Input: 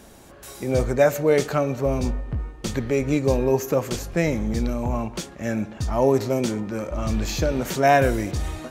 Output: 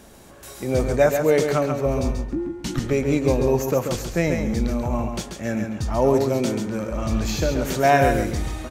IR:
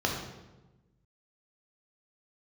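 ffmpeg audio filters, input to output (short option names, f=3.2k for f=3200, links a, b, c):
-filter_complex "[0:a]asettb=1/sr,asplit=3[a][b][c];[a]atrim=end=2.314[d];[b]atrim=start=2.31:end=2.8,asetpts=PTS-STARTPTS,afade=t=in:d=0.004:c=qsin,afade=t=out:st=0.486:d=0.004:c=qsin,afreqshift=-400[e];[c]atrim=start=2.796[f];[d][e]acrossfade=d=0.004:c1=hsin:c2=qsin[g];[g][f]acrossfade=d=0.004:c1=qsin:c2=hsin,aecho=1:1:136|272|408:0.501|0.105|0.0221"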